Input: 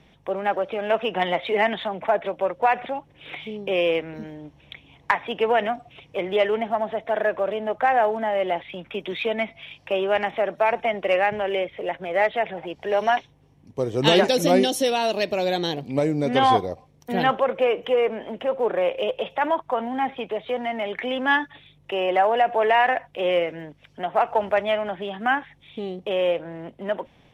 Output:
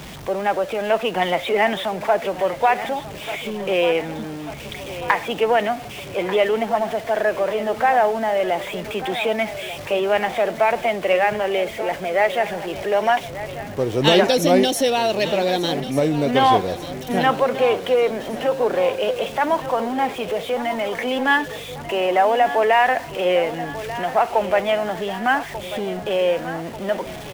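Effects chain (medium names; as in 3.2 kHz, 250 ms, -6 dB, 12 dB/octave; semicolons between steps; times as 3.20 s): jump at every zero crossing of -33.5 dBFS; feedback delay 1190 ms, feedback 57%, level -13.5 dB; trim +2 dB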